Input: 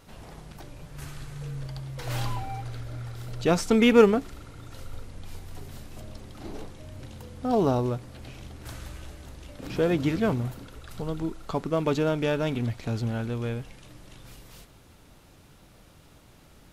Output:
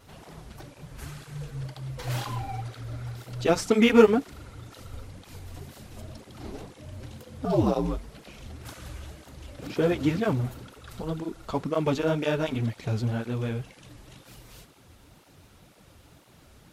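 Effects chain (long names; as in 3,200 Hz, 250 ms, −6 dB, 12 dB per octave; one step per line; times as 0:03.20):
0:07.45–0:08.46: frequency shifter −73 Hz
through-zero flanger with one copy inverted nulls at 2 Hz, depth 7.2 ms
level +3 dB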